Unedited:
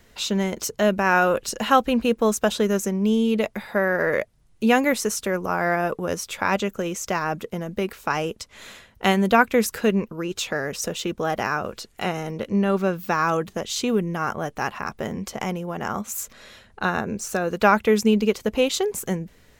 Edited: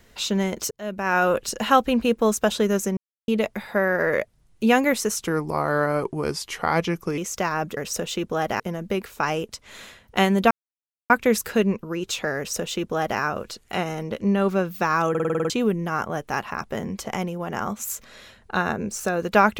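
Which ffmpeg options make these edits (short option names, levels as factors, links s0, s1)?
-filter_complex "[0:a]asplit=17[s0][s1][s2][s3][s4][s5][s6][s7][s8][s9][s10][s11][s12][s13][s14][s15][s16];[s0]atrim=end=0.71,asetpts=PTS-STARTPTS,afade=t=out:st=0.706:d=0.004:c=hsin[s17];[s1]atrim=start=0.71:end=2.97,asetpts=PTS-STARTPTS,afade=t=in:d=0.59,afade=t=out:st=2.256:d=0.004:c=hsin[s18];[s2]atrim=start=2.97:end=3.28,asetpts=PTS-STARTPTS,volume=0[s19];[s3]atrim=start=3.28:end=5.194,asetpts=PTS-STARTPTS,afade=t=in:d=0.004:c=hsin[s20];[s4]atrim=start=5.19:end=6.88,asetpts=PTS-STARTPTS,asetrate=37485,aresample=44100,atrim=end_sample=87681,asetpts=PTS-STARTPTS[s21];[s5]atrim=start=6.876:end=7.472[s22];[s6]atrim=start=10.648:end=11.482[s23];[s7]atrim=start=7.468:end=9.38,asetpts=PTS-STARTPTS,afade=t=out:st=1.908:d=0.004:c=hsin,apad=pad_dur=0.59[s24];[s8]atrim=start=9.38:end=13.432,asetpts=PTS-STARTPTS,afade=t=in:d=0.004:c=hsin[s25];[s9]atrim=start=13.378:end=13.432[s26];[s10]atrim=start=13.378:end=13.432[s27];[s11]atrim=start=13.378:end=13.432[s28];[s12]atrim=start=13.378:end=13.432[s29];[s13]atrim=start=13.378:end=13.432[s30];[s14]atrim=start=13.378:end=13.432[s31];[s15]atrim=start=13.378:end=13.432[s32];[s16]atrim=start=13.778[s33];[s17][s18][s19][s20]concat=n=4:v=0:a=1[s34];[s34][s21]acrossfade=d=0.004:c1=hsin:c2=hsin[s35];[s35][s22]acrossfade=d=0.004:c1=hsin:c2=hsin[s36];[s36][s23]acrossfade=d=0.004:c1=hsin:c2=hsin[s37];[s24][s25]concat=n=2:v=0:a=1[s38];[s37][s38]acrossfade=d=0.004:c1=hsin:c2=hsin[s39];[s39][s26]acrossfade=d=0.004:c1=hsin:c2=hsin[s40];[s40][s27]acrossfade=d=0.004:c1=hsin:c2=hsin[s41];[s41][s28]acrossfade=d=0.004:c1=hsin:c2=hsin[s42];[s42][s29]acrossfade=d=0.004:c1=hsin:c2=hsin[s43];[s43][s30]acrossfade=d=0.004:c1=hsin:c2=hsin[s44];[s44][s31]acrossfade=d=0.004:c1=hsin:c2=hsin[s45];[s45][s32]acrossfade=d=0.004:c1=hsin:c2=hsin[s46];[s46][s33]acrossfade=d=0.004:c1=hsin:c2=hsin"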